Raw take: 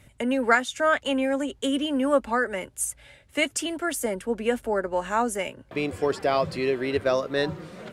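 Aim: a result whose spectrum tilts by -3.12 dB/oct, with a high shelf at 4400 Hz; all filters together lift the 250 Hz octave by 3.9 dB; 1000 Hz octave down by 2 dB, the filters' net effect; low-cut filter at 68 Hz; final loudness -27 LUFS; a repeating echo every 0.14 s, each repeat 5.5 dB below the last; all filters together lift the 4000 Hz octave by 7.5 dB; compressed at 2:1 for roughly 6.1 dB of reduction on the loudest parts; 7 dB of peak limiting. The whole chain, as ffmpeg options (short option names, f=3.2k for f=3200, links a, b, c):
-af "highpass=68,equalizer=f=250:t=o:g=4.5,equalizer=f=1k:t=o:g=-4,equalizer=f=4k:t=o:g=7.5,highshelf=f=4.4k:g=6.5,acompressor=threshold=-27dB:ratio=2,alimiter=limit=-19.5dB:level=0:latency=1,aecho=1:1:140|280|420|560|700|840|980:0.531|0.281|0.149|0.079|0.0419|0.0222|0.0118,volume=1dB"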